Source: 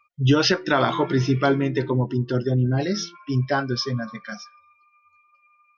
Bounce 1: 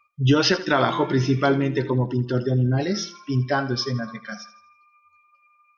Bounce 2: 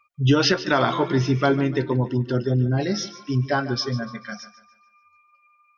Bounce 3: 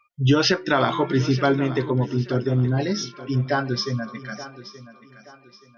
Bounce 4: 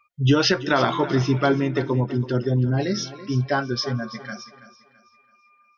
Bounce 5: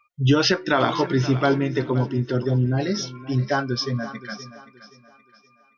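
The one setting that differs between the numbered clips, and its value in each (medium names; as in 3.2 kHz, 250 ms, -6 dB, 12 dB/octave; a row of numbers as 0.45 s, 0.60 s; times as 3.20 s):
thinning echo, time: 81 ms, 146 ms, 876 ms, 331 ms, 523 ms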